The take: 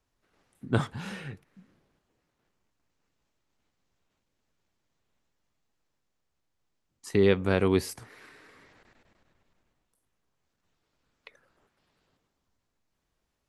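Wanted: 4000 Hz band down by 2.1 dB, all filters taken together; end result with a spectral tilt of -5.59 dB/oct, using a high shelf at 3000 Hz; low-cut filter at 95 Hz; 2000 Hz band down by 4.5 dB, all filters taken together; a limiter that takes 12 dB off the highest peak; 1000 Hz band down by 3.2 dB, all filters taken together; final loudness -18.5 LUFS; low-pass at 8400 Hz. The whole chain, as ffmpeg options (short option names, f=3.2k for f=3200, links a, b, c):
-af "highpass=95,lowpass=8.4k,equalizer=f=1k:t=o:g=-3,equalizer=f=2k:t=o:g=-5.5,highshelf=f=3k:g=4,equalizer=f=4k:t=o:g=-3.5,volume=18dB,alimiter=limit=-4.5dB:level=0:latency=1"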